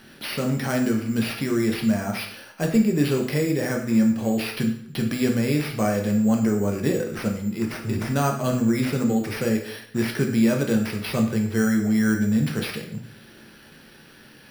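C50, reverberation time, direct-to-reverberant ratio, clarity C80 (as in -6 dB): 7.0 dB, 0.65 s, 1.5 dB, 10.5 dB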